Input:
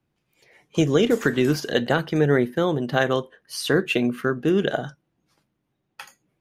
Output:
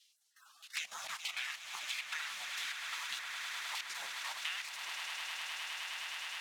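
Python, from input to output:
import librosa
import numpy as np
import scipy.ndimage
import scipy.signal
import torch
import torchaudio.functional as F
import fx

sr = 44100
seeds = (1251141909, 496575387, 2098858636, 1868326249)

y = fx.block_float(x, sr, bits=5)
y = fx.spec_gate(y, sr, threshold_db=-30, keep='weak')
y = scipy.signal.sosfilt(scipy.signal.butter(2, 72.0, 'highpass', fs=sr, output='sos'), y)
y = fx.high_shelf(y, sr, hz=2900.0, db=3.0)
y = fx.level_steps(y, sr, step_db=14)
y = fx.phaser_stages(y, sr, stages=2, low_hz=120.0, high_hz=2200.0, hz=1.3, feedback_pct=25)
y = fx.filter_lfo_bandpass(y, sr, shape='saw_down', hz=1.6, low_hz=900.0, high_hz=3000.0, q=1.9)
y = fx.echo_swell(y, sr, ms=104, loudest=8, wet_db=-13.5)
y = fx.band_squash(y, sr, depth_pct=100)
y = F.gain(torch.from_numpy(y), 11.0).numpy()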